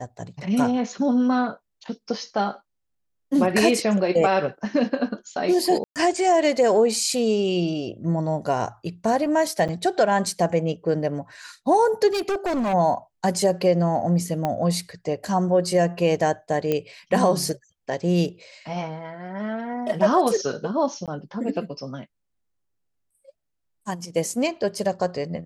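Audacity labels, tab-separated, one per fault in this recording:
5.840000	5.960000	gap 0.118 s
9.680000	9.690000	gap 7.3 ms
12.070000	12.740000	clipped -21 dBFS
14.450000	14.450000	pop -12 dBFS
16.720000	16.720000	pop -11 dBFS
21.060000	21.080000	gap 17 ms

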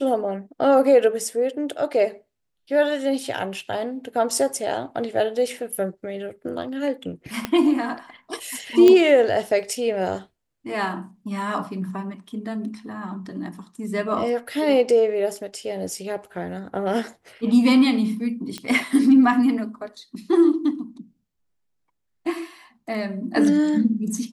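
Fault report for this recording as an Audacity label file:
7.450000	7.450000	pop -9 dBFS
8.880000	8.880000	pop -5 dBFS
18.580000	18.580000	pop -16 dBFS

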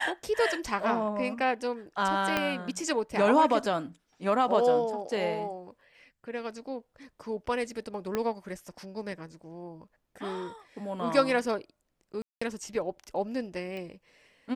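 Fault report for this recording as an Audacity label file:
2.370000	2.370000	pop -12 dBFS
8.150000	8.150000	pop -16 dBFS
12.220000	12.410000	gap 0.195 s
13.770000	13.770000	pop

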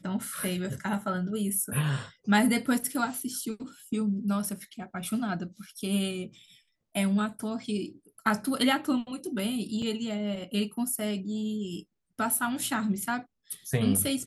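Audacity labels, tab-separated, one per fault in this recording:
9.820000	9.820000	gap 4.3 ms

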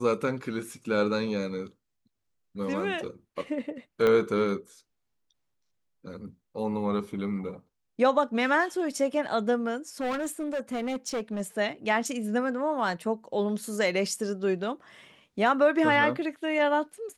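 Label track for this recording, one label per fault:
4.070000	4.070000	pop -14 dBFS
10.000000	11.410000	clipped -27 dBFS

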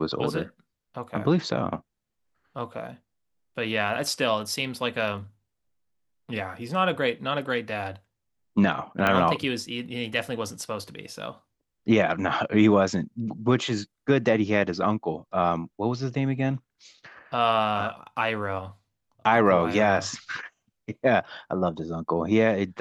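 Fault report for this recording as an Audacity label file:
9.070000	9.070000	pop -10 dBFS

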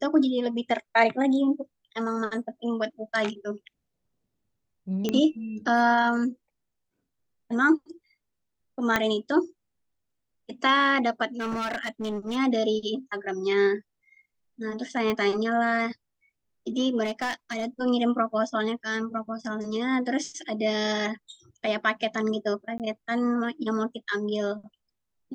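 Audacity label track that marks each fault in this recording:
5.090000	5.090000	pop -13 dBFS
8.960000	8.960000	pop -8 dBFS
11.390000	12.370000	clipped -26.5 dBFS
15.100000	15.100000	pop -14 dBFS
17.030000	17.650000	clipped -24 dBFS
22.780000	22.800000	gap 18 ms

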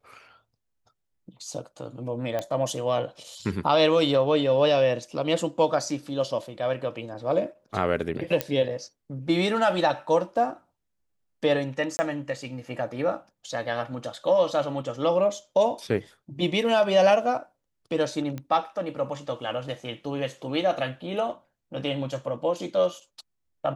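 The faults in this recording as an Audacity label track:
2.390000	2.390000	pop -16 dBFS
8.410000	8.410000	pop -9 dBFS
11.970000	11.990000	gap 20 ms
18.380000	18.380000	pop -21 dBFS

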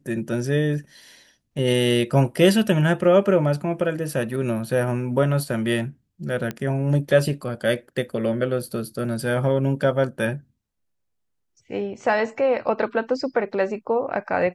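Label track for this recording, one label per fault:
6.510000	6.510000	pop -15 dBFS

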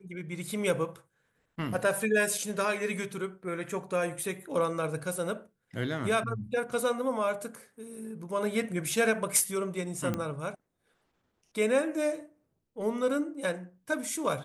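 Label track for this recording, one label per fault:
10.140000	10.140000	pop -18 dBFS

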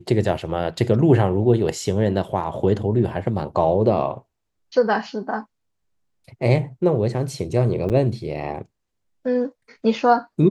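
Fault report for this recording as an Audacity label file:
7.890000	7.900000	gap 8.2 ms

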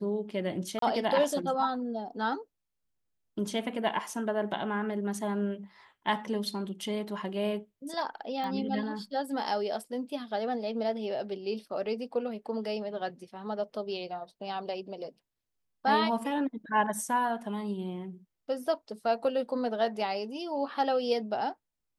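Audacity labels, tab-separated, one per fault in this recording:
0.790000	0.820000	gap 33 ms
8.440000	8.440000	pop -25 dBFS

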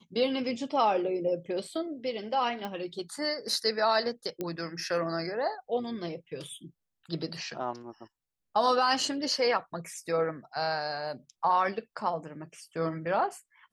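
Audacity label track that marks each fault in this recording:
2.650000	2.650000	pop -22 dBFS
4.410000	4.410000	pop -20 dBFS

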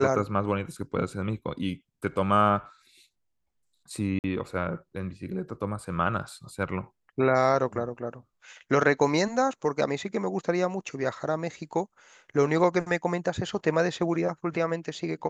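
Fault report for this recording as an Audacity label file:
4.190000	4.240000	gap 49 ms

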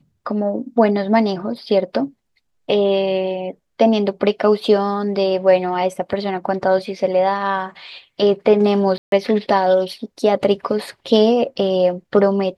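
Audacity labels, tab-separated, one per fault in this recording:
8.980000	9.120000	gap 0.142 s

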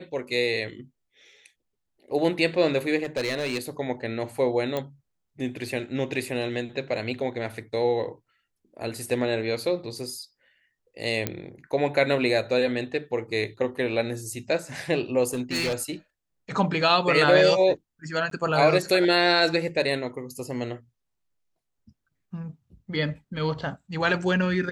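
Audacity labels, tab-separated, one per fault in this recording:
3.030000	3.690000	clipped -22.5 dBFS
4.770000	4.770000	pop -15 dBFS
11.270000	11.270000	pop -10 dBFS
15.280000	15.740000	clipped -23 dBFS
18.300000	18.310000	gap

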